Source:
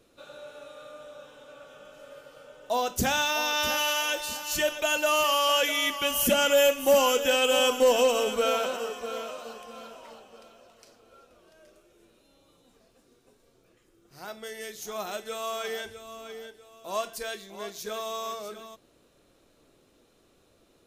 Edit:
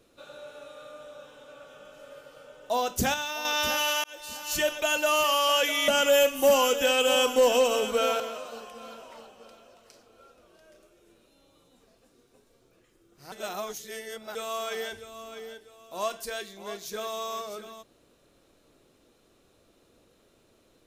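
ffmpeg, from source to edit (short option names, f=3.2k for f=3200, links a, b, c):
-filter_complex "[0:a]asplit=8[a][b][c][d][e][f][g][h];[a]atrim=end=3.142[i];[b]atrim=start=3.138:end=3.452,asetpts=PTS-STARTPTS,volume=-6.5dB[j];[c]atrim=start=3.448:end=4.04,asetpts=PTS-STARTPTS,afade=t=out:st=0.588:d=0.004:c=hsin[k];[d]atrim=start=4.04:end=5.882,asetpts=PTS-STARTPTS,afade=t=in:d=0.49[l];[e]atrim=start=6.318:end=8.642[m];[f]atrim=start=9.128:end=14.252[n];[g]atrim=start=14.248:end=15.282,asetpts=PTS-STARTPTS,areverse[o];[h]atrim=start=15.278[p];[i][j]acrossfade=d=0.004:c1=hsin:c2=hsin[q];[k][l]concat=n=2:v=0:a=1[r];[q][r]acrossfade=d=0.004:c1=hsin:c2=hsin[s];[s][m]acrossfade=d=0.004:c1=hsin:c2=hsin[t];[t][n]acrossfade=d=0.004:c1=hsin:c2=hsin[u];[u][o]acrossfade=d=0.004:c1=hsin:c2=hsin[v];[v][p]acrossfade=d=0.004:c1=hsin:c2=hsin"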